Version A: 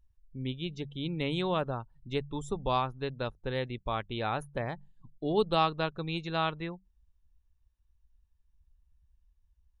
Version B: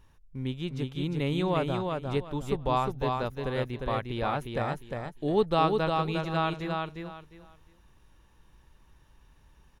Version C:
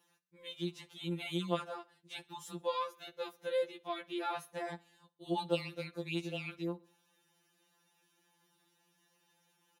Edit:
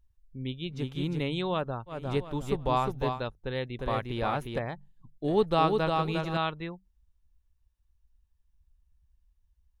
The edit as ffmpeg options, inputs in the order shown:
-filter_complex "[1:a]asplit=4[a][b][c][d];[0:a]asplit=5[e][f][g][h][i];[e]atrim=end=0.85[j];[a]atrim=start=0.69:end=1.31[k];[f]atrim=start=1.15:end=2.02[l];[b]atrim=start=1.86:end=3.23[m];[g]atrim=start=3.07:end=3.792[n];[c]atrim=start=3.788:end=4.592[o];[h]atrim=start=4.588:end=5.242[p];[d]atrim=start=5.238:end=6.372[q];[i]atrim=start=6.368[r];[j][k]acrossfade=d=0.16:c1=tri:c2=tri[s];[s][l]acrossfade=d=0.16:c1=tri:c2=tri[t];[t][m]acrossfade=d=0.16:c1=tri:c2=tri[u];[u][n]acrossfade=d=0.16:c1=tri:c2=tri[v];[v][o]acrossfade=d=0.004:c1=hsin:c2=hsin[w];[w][p]acrossfade=d=0.004:c1=hsin:c2=hsin[x];[x][q]acrossfade=d=0.004:c1=hsin:c2=hsin[y];[y][r]acrossfade=d=0.004:c1=hsin:c2=hsin"

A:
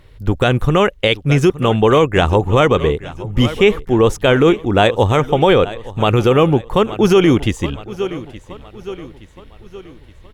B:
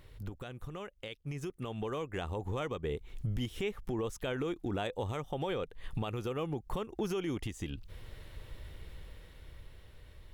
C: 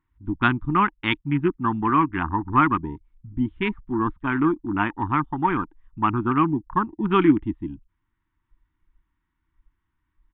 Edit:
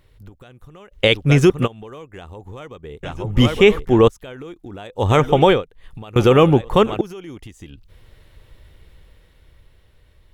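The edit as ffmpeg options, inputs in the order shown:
-filter_complex "[0:a]asplit=4[a][b][c][d];[1:a]asplit=5[e][f][g][h][i];[e]atrim=end=0.95[j];[a]atrim=start=0.91:end=1.68[k];[f]atrim=start=1.64:end=3.032[l];[b]atrim=start=3.028:end=4.082[m];[g]atrim=start=4.078:end=5.11[n];[c]atrim=start=4.95:end=5.63[o];[h]atrim=start=5.47:end=6.162[p];[d]atrim=start=6.158:end=7.012[q];[i]atrim=start=7.008[r];[j][k]acrossfade=d=0.04:c1=tri:c2=tri[s];[s][l]acrossfade=d=0.04:c1=tri:c2=tri[t];[t][m]acrossfade=d=0.004:c1=hsin:c2=hsin[u];[u][n]acrossfade=d=0.004:c1=hsin:c2=hsin[v];[v][o]acrossfade=d=0.16:c1=tri:c2=tri[w];[w][p]acrossfade=d=0.16:c1=tri:c2=tri[x];[x][q]acrossfade=d=0.004:c1=hsin:c2=hsin[y];[y][r]acrossfade=d=0.004:c1=hsin:c2=hsin"

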